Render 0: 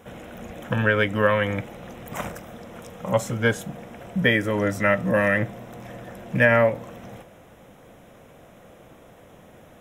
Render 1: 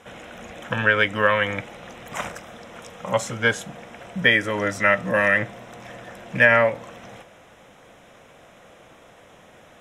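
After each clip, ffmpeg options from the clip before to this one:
-af "lowpass=8k,tiltshelf=f=630:g=-5.5"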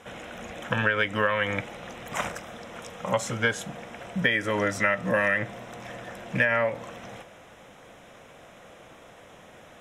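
-af "acompressor=threshold=-20dB:ratio=6"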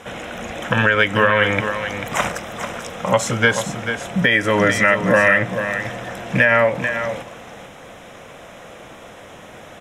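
-af "aecho=1:1:441:0.355,alimiter=level_in=11.5dB:limit=-1dB:release=50:level=0:latency=1,volume=-2dB"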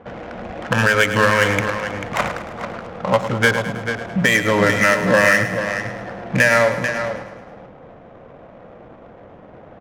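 -af "adynamicsmooth=sensitivity=1.5:basefreq=760,aecho=1:1:106|212|318|424|530|636:0.282|0.152|0.0822|0.0444|0.024|0.0129"

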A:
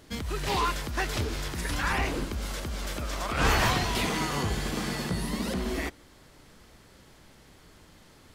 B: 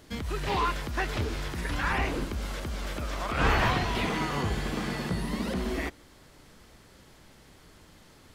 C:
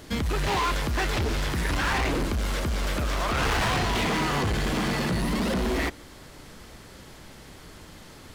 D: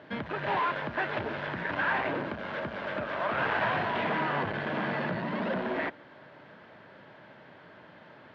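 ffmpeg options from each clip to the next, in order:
-filter_complex "[0:a]acrossover=split=3600[a][b];[b]acompressor=threshold=-46dB:ratio=4:attack=1:release=60[c];[a][c]amix=inputs=2:normalize=0"
-af "volume=31.5dB,asoftclip=hard,volume=-31.5dB,volume=8.5dB"
-af "highpass=f=120:w=0.5412,highpass=f=120:w=1.3066,equalizer=f=610:t=q:w=4:g=10,equalizer=f=930:t=q:w=4:g=6,equalizer=f=1.6k:t=q:w=4:g=9,lowpass=f=3.2k:w=0.5412,lowpass=f=3.2k:w=1.3066,volume=-7dB"

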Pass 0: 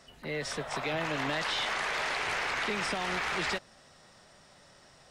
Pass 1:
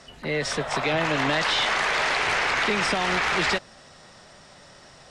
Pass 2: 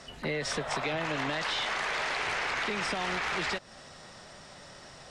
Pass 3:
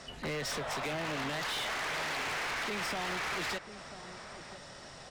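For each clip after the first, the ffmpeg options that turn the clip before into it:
-af "lowpass=9.3k,volume=8.5dB"
-af "acompressor=threshold=-29dB:ratio=6"
-filter_complex "[0:a]asoftclip=type=hard:threshold=-33dB,asplit=2[a][b];[b]adelay=991.3,volume=-12dB,highshelf=f=4k:g=-22.3[c];[a][c]amix=inputs=2:normalize=0"

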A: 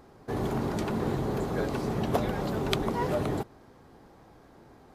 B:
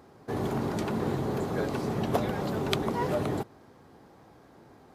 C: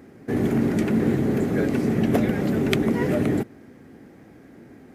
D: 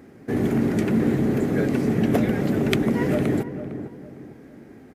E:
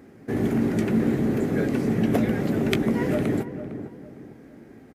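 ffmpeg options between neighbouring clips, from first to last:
-af "highpass=73"
-af "equalizer=f=250:t=o:w=1:g=8,equalizer=f=1k:t=o:w=1:g=-11,equalizer=f=2k:t=o:w=1:g=8,equalizer=f=4k:t=o:w=1:g=-7,volume=5dB"
-filter_complex "[0:a]asplit=2[a][b];[b]adelay=455,lowpass=f=1.1k:p=1,volume=-10dB,asplit=2[c][d];[d]adelay=455,lowpass=f=1.1k:p=1,volume=0.35,asplit=2[e][f];[f]adelay=455,lowpass=f=1.1k:p=1,volume=0.35,asplit=2[g][h];[h]adelay=455,lowpass=f=1.1k:p=1,volume=0.35[i];[a][c][e][g][i]amix=inputs=5:normalize=0"
-filter_complex "[0:a]asplit=2[a][b];[b]adelay=18,volume=-13dB[c];[a][c]amix=inputs=2:normalize=0,volume=-2dB"

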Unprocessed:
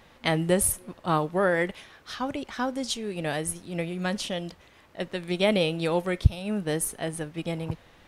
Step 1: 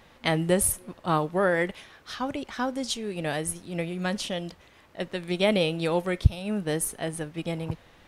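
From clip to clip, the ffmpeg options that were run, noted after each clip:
-af anull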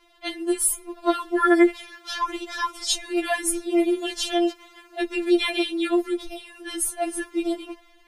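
-af "dynaudnorm=f=170:g=9:m=10dB,afftfilt=real='re*4*eq(mod(b,16),0)':imag='im*4*eq(mod(b,16),0)':win_size=2048:overlap=0.75"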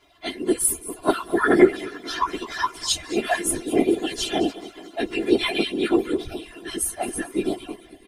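-af "aecho=1:1:218|436|654|872|1090:0.141|0.0735|0.0382|0.0199|0.0103,afftfilt=real='hypot(re,im)*cos(2*PI*random(0))':imag='hypot(re,im)*sin(2*PI*random(1))':win_size=512:overlap=0.75,volume=6.5dB"

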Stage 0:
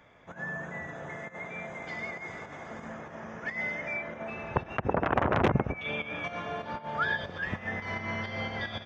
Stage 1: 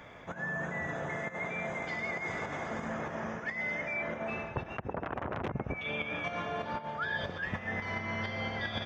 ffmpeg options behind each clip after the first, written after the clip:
-af "alimiter=limit=-18.5dB:level=0:latency=1:release=232,areverse,acompressor=threshold=-41dB:ratio=6,areverse,volume=8dB"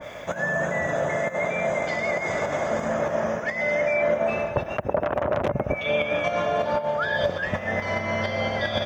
-af "equalizer=f=590:w=4.8:g=13.5,crystalizer=i=3.5:c=0,adynamicequalizer=threshold=0.00631:dfrequency=1700:dqfactor=0.7:tfrequency=1700:tqfactor=0.7:attack=5:release=100:ratio=0.375:range=3:mode=cutabove:tftype=highshelf,volume=7.5dB"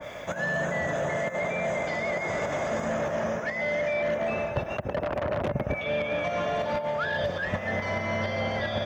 -filter_complex "[0:a]acrossover=split=240|2000[a][b][c];[b]asoftclip=type=tanh:threshold=-23.5dB[d];[c]alimiter=level_in=8dB:limit=-24dB:level=0:latency=1:release=38,volume=-8dB[e];[a][d][e]amix=inputs=3:normalize=0,volume=-1dB"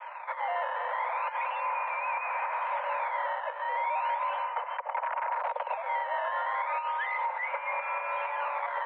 -af "acrusher=samples=12:mix=1:aa=0.000001:lfo=1:lforange=19.2:lforate=0.36,highpass=f=200:t=q:w=0.5412,highpass=f=200:t=q:w=1.307,lowpass=f=2.2k:t=q:w=0.5176,lowpass=f=2.2k:t=q:w=0.7071,lowpass=f=2.2k:t=q:w=1.932,afreqshift=350,volume=-2dB"

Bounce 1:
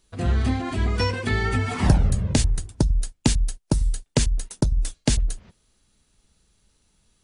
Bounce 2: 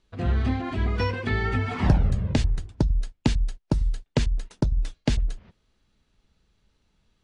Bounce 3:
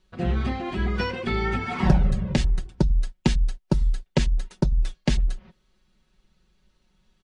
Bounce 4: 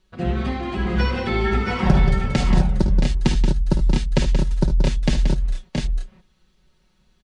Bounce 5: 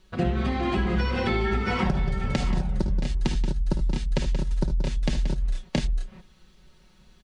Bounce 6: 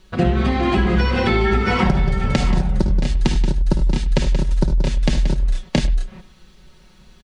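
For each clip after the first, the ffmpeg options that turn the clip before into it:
-af "lowpass=3.7k,volume=-2dB"
-af "aecho=1:1:5.4:0.75"
-af "aecho=1:1:54|74|179|673|702:0.299|0.282|0.398|0.501|0.501,volume=1.5dB"
-af "acompressor=threshold=-27dB:ratio=10,volume=6dB"
-filter_complex "[0:a]asplit=2[a][b];[b]adelay=100,highpass=300,lowpass=3.4k,asoftclip=type=hard:threshold=-18.5dB,volume=-15dB[c];[a][c]amix=inputs=2:normalize=0,volume=7.5dB"

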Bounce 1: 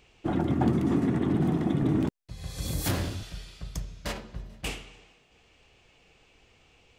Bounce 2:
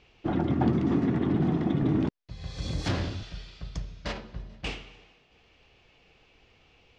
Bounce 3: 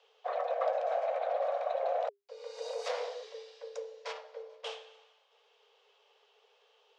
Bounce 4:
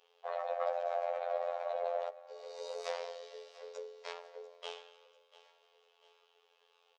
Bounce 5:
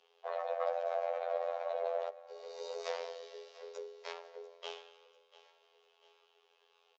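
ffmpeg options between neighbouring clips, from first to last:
-af "lowpass=f=5.5k:w=0.5412,lowpass=f=5.5k:w=1.3066"
-af "afreqshift=400,volume=-7dB"
-af "afftfilt=real='hypot(re,im)*cos(PI*b)':imag='0':win_size=2048:overlap=0.75,aecho=1:1:693|1386|2079|2772:0.133|0.06|0.027|0.0122"
-af "afreqshift=-15,aresample=16000,aresample=44100"

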